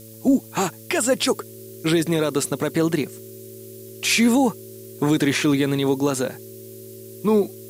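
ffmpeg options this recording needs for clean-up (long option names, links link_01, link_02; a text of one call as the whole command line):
ffmpeg -i in.wav -af "adeclick=threshold=4,bandreject=frequency=111.3:width_type=h:width=4,bandreject=frequency=222.6:width_type=h:width=4,bandreject=frequency=333.9:width_type=h:width=4,bandreject=frequency=445.2:width_type=h:width=4,bandreject=frequency=556.5:width_type=h:width=4,bandreject=frequency=380:width=30,afftdn=noise_reduction=26:noise_floor=-40" out.wav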